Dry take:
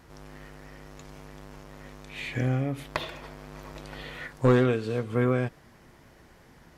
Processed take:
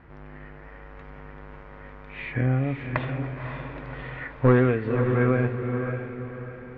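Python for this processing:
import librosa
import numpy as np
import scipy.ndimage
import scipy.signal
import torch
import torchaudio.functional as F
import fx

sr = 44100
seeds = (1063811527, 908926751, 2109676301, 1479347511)

y = fx.ladder_lowpass(x, sr, hz=2600.0, resonance_pct=30)
y = fx.low_shelf(y, sr, hz=240.0, db=4.5)
y = fx.echo_diffused(y, sr, ms=545, feedback_pct=42, wet_db=-6.0)
y = y * 10.0 ** (7.0 / 20.0)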